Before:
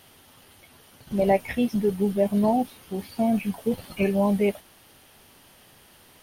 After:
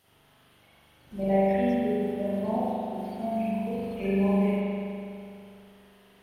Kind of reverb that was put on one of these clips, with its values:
spring reverb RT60 2.6 s, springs 41 ms, chirp 60 ms, DRR −9.5 dB
level −14 dB

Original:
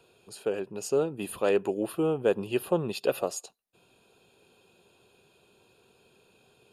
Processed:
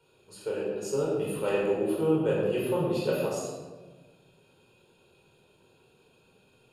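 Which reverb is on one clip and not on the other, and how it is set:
rectangular room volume 1,000 cubic metres, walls mixed, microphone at 4.6 metres
level −9.5 dB

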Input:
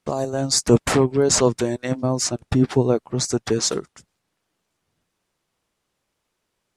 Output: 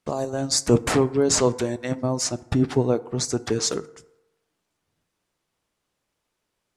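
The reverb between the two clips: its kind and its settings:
feedback delay network reverb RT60 0.94 s, low-frequency decay 0.7×, high-frequency decay 0.45×, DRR 14.5 dB
level −2.5 dB

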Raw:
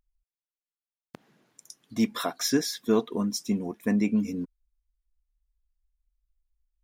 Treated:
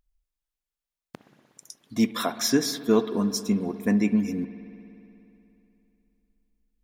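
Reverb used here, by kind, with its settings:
spring reverb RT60 3 s, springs 60 ms, chirp 20 ms, DRR 12 dB
level +2.5 dB

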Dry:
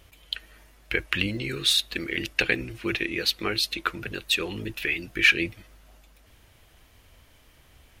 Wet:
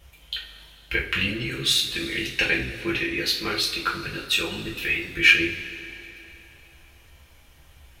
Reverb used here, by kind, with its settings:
coupled-rooms reverb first 0.33 s, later 3.1 s, from −19 dB, DRR −5 dB
level −4 dB

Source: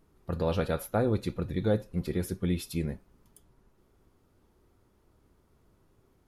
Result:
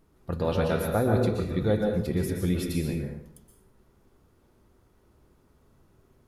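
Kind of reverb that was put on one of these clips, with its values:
dense smooth reverb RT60 0.77 s, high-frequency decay 0.7×, pre-delay 110 ms, DRR 1 dB
level +1.5 dB

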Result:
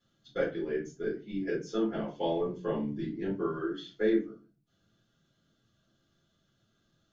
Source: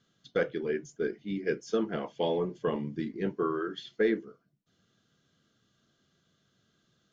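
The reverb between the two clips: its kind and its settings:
rectangular room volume 120 cubic metres, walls furnished, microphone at 4.1 metres
level −11.5 dB

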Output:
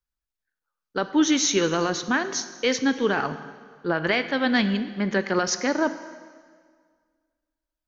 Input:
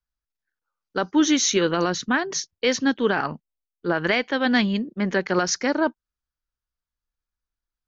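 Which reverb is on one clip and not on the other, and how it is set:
dense smooth reverb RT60 1.8 s, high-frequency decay 0.9×, DRR 10.5 dB
level −1.5 dB

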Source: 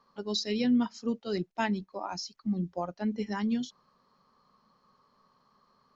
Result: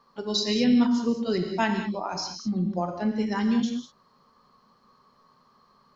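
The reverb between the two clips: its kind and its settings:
reverb whose tail is shaped and stops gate 230 ms flat, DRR 4 dB
level +4.5 dB

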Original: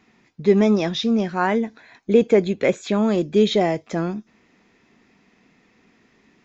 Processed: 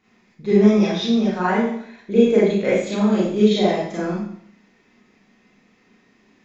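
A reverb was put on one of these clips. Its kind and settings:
four-comb reverb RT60 0.64 s, combs from 30 ms, DRR −8.5 dB
level −8.5 dB

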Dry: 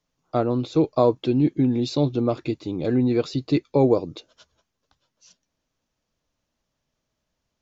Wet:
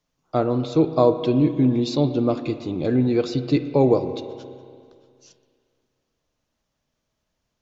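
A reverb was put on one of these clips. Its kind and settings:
spring reverb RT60 2.2 s, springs 31/46 ms, chirp 30 ms, DRR 9.5 dB
level +1 dB

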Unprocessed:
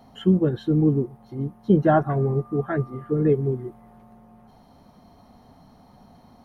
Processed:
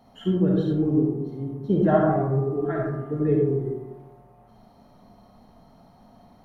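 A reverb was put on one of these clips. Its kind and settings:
comb and all-pass reverb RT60 0.98 s, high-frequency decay 0.35×, pre-delay 15 ms, DRR −2 dB
level −5.5 dB

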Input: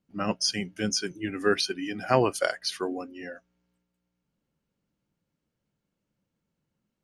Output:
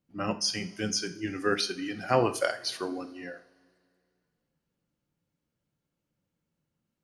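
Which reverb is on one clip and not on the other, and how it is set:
coupled-rooms reverb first 0.39 s, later 2.3 s, from −20 dB, DRR 7.5 dB
level −2.5 dB

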